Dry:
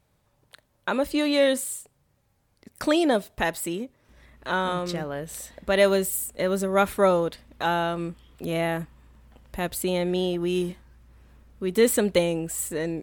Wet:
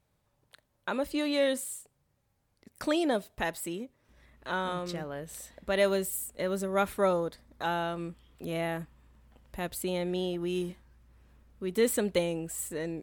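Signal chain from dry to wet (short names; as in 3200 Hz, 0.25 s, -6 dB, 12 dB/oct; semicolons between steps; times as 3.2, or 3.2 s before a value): 7.13–7.64 bell 2800 Hz -11 dB 0.5 oct; gain -6.5 dB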